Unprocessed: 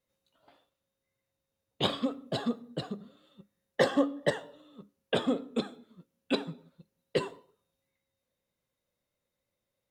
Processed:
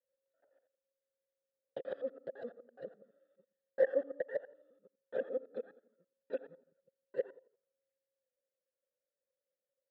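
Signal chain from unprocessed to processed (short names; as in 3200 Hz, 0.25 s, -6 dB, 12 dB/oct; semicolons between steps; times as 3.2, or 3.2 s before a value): local time reversal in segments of 84 ms; vowel filter e; resonant high shelf 1900 Hz -10 dB, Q 3; gain -1 dB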